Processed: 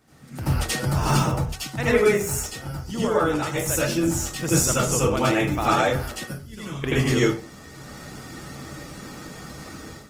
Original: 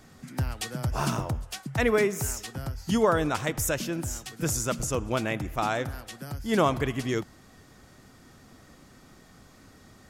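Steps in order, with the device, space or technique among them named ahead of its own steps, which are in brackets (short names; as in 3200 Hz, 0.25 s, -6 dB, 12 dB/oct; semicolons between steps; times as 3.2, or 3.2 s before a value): 6.24–6.84 passive tone stack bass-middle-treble 6-0-2; far-field microphone of a smart speaker (reverb RT60 0.30 s, pre-delay 76 ms, DRR -7.5 dB; HPF 95 Hz 6 dB/oct; AGC gain up to 14 dB; gain -6.5 dB; Opus 20 kbps 48000 Hz)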